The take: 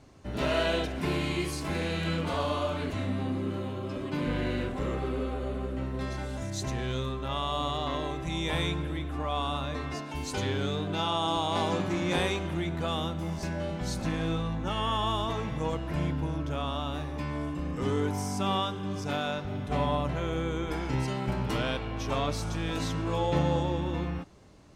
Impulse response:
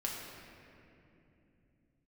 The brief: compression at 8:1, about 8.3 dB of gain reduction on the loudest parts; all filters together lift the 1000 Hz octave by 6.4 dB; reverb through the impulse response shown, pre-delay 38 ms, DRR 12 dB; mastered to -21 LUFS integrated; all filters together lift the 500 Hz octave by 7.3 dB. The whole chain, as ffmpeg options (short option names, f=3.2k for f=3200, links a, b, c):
-filter_complex "[0:a]equalizer=f=500:t=o:g=7.5,equalizer=f=1k:t=o:g=5.5,acompressor=threshold=-26dB:ratio=8,asplit=2[a][b];[1:a]atrim=start_sample=2205,adelay=38[c];[b][c]afir=irnorm=-1:irlink=0,volume=-14.5dB[d];[a][d]amix=inputs=2:normalize=0,volume=10dB"